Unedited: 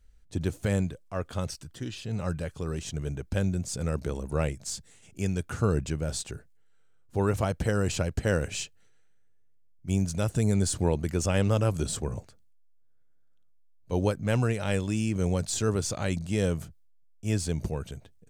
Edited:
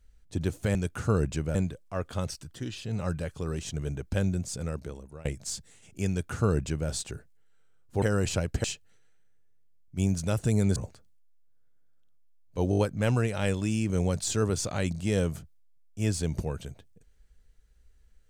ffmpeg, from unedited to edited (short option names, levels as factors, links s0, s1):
-filter_complex "[0:a]asplit=11[s0][s1][s2][s3][s4][s5][s6][s7][s8][s9][s10];[s0]atrim=end=0.752[s11];[s1]atrim=start=5.288:end=6.092[s12];[s2]atrim=start=0.748:end=4.45,asetpts=PTS-STARTPTS,afade=t=out:st=2.792:d=0.91:silence=0.0630957[s13];[s3]atrim=start=4.45:end=7.222,asetpts=PTS-STARTPTS,afade=t=in:d=0.004:c=hsin:silence=0.0630957[s14];[s4]atrim=start=7.648:end=8.272[s15];[s5]atrim=start=8.548:end=10.672[s16];[s6]atrim=start=12.098:end=14.062[s17];[s7]atrim=start=14.038:end=14.062[s18];[s8]atrim=start=14.038:end=14.062[s19];[s9]atrim=start=14.038:end=14.062[s20];[s10]atrim=start=14.038[s21];[s11][s12]acrossfade=d=0.004:c1=hsin:c2=hsin[s22];[s13][s14]concat=n=2:v=0:a=1[s23];[s22][s23]acrossfade=d=0.004:c1=hsin:c2=hsin[s24];[s24][s15]acrossfade=d=0.004:c1=hsin:c2=hsin[s25];[s25][s16]acrossfade=d=0.004:c1=hsin:c2=hsin[s26];[s26][s17]acrossfade=d=0.004:c1=hsin:c2=hsin[s27];[s27][s18]acrossfade=d=0.004:c1=hsin:c2=hsin[s28];[s28][s19]acrossfade=d=0.004:c1=hsin:c2=hsin[s29];[s29][s20]acrossfade=d=0.004:c1=hsin:c2=hsin[s30];[s30][s21]acrossfade=d=0.004:c1=hsin:c2=hsin"